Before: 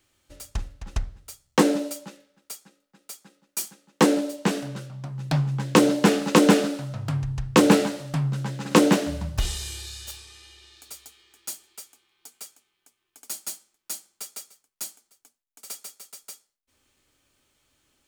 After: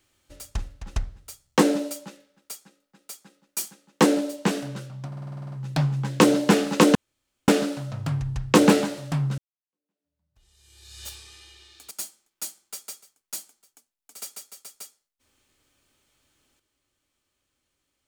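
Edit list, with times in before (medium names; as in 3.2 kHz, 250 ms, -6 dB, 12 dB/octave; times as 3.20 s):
5.07 s: stutter 0.05 s, 10 plays
6.50 s: insert room tone 0.53 s
8.40–10.06 s: fade in exponential
10.93–13.39 s: delete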